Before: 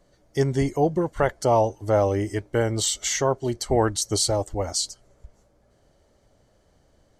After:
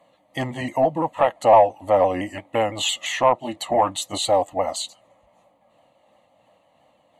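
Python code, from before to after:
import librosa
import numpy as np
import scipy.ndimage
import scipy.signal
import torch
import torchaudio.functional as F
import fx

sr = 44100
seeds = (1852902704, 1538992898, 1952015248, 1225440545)

p1 = fx.pitch_ramps(x, sr, semitones=-2.0, every_ms=170)
p2 = scipy.signal.sosfilt(scipy.signal.butter(2, 350.0, 'highpass', fs=sr, output='sos'), p1)
p3 = fx.high_shelf(p2, sr, hz=3900.0, db=-10.5)
p4 = fx.fold_sine(p3, sr, drive_db=4, ceiling_db=-11.0)
p5 = p3 + F.gain(torch.from_numpy(p4), -10.0).numpy()
p6 = fx.fixed_phaser(p5, sr, hz=1500.0, stages=6)
y = F.gain(torch.from_numpy(p6), 8.0).numpy()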